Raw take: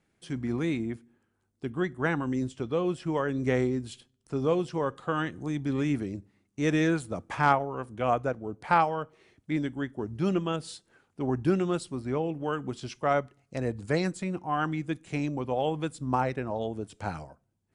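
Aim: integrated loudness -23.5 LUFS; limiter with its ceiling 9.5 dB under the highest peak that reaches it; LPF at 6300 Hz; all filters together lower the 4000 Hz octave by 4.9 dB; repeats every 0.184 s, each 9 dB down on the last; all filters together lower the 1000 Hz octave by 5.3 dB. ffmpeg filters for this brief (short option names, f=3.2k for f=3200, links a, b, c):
-af "lowpass=6.3k,equalizer=f=1k:t=o:g=-7,equalizer=f=4k:t=o:g=-5.5,alimiter=limit=-21.5dB:level=0:latency=1,aecho=1:1:184|368|552|736:0.355|0.124|0.0435|0.0152,volume=9.5dB"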